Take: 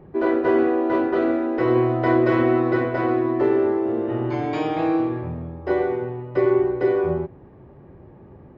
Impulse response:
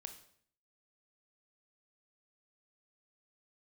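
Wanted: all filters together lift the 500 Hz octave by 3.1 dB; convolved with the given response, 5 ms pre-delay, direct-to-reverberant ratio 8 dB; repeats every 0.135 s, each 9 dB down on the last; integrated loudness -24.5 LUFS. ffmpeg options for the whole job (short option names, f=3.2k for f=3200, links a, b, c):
-filter_complex "[0:a]equalizer=f=500:t=o:g=4.5,aecho=1:1:135|270|405|540:0.355|0.124|0.0435|0.0152,asplit=2[a][b];[1:a]atrim=start_sample=2205,adelay=5[c];[b][c]afir=irnorm=-1:irlink=0,volume=-3dB[d];[a][d]amix=inputs=2:normalize=0,volume=-7dB"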